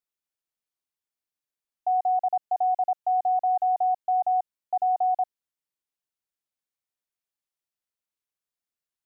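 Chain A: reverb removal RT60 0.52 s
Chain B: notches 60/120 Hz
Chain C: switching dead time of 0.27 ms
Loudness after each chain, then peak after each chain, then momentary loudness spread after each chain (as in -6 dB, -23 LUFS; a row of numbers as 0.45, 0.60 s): -26.5, -25.5, -26.5 LUFS; -19.0, -19.0, -19.0 dBFS; 5, 5, 5 LU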